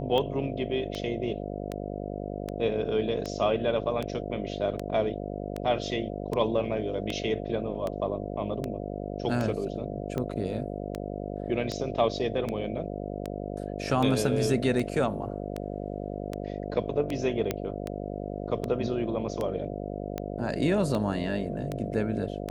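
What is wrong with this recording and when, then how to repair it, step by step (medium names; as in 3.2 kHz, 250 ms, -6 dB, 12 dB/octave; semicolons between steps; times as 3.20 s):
buzz 50 Hz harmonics 14 -35 dBFS
tick 78 rpm -18 dBFS
17.51 s: pop -13 dBFS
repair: de-click; de-hum 50 Hz, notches 14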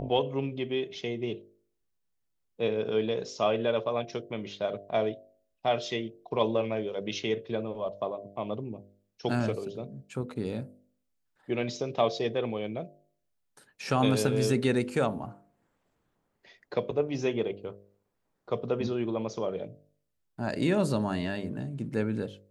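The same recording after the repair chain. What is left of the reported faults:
nothing left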